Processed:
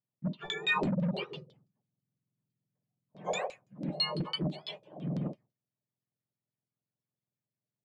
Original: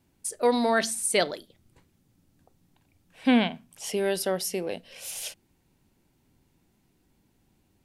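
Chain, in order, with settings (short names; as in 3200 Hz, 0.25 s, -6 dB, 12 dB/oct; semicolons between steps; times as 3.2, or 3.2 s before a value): spectrum mirrored in octaves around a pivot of 1300 Hz; gate with hold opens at -51 dBFS; 0.74–3.4 bell 160 Hz +10.5 dB 1.8 oct; compressor 6:1, threshold -18 dBFS, peak gain reduction 13 dB; overloaded stage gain 20 dB; resonator 610 Hz, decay 0.19 s, harmonics all, mix 60%; LFO low-pass saw down 6 Hz 490–4800 Hz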